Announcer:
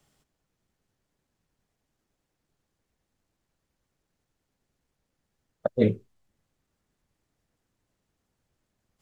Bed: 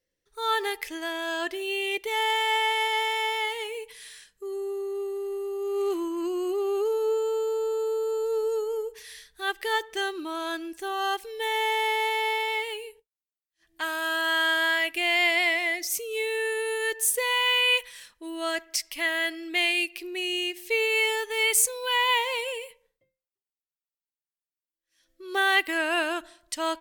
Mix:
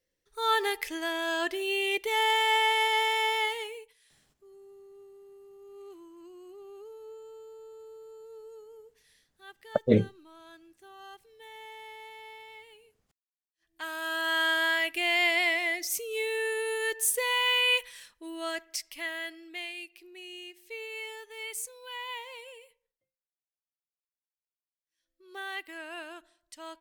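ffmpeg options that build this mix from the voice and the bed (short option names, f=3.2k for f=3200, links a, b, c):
-filter_complex "[0:a]adelay=4100,volume=0dB[a];[1:a]volume=18dB,afade=t=out:st=3.44:d=0.5:silence=0.0944061,afade=t=in:st=13.25:d=1.17:silence=0.125893,afade=t=out:st=17.86:d=1.86:silence=0.223872[b];[a][b]amix=inputs=2:normalize=0"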